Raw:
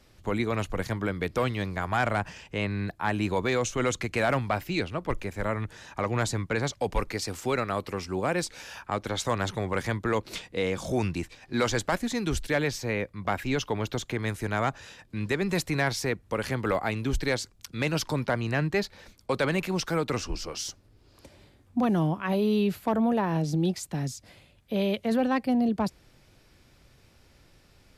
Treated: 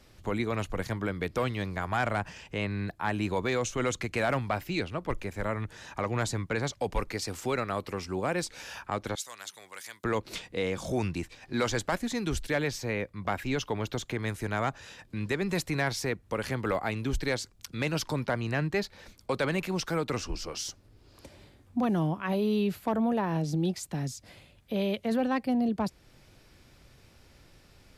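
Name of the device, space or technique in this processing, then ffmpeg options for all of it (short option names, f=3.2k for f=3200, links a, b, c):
parallel compression: -filter_complex "[0:a]asettb=1/sr,asplit=3[a][b][c];[a]atrim=end=9.154[d];[b]atrim=start=9.15:end=10.04,asetpts=PTS-STARTPTS,afade=t=in:d=0.004:c=qsin,afade=t=out:st=0.886:d=0.004:c=qsin,aderivative[e];[c]atrim=start=10.036[f];[d][e]acrossfade=d=0.004:c1=hsin:c2=qsin[g];[g][f]acrossfade=d=0.004:c1=qsin:c2=hsin,asplit=2[h][i];[i]acompressor=threshold=-41dB:ratio=6,volume=-2.5dB[j];[h][j]amix=inputs=2:normalize=0,volume=-3.5dB"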